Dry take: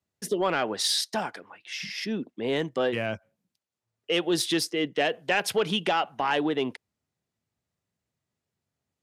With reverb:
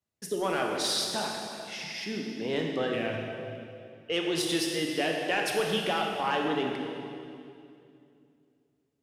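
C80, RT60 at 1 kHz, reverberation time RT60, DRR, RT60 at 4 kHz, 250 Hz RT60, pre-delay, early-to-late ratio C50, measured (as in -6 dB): 3.0 dB, 2.3 s, 2.5 s, 0.5 dB, 2.3 s, 3.2 s, 21 ms, 2.0 dB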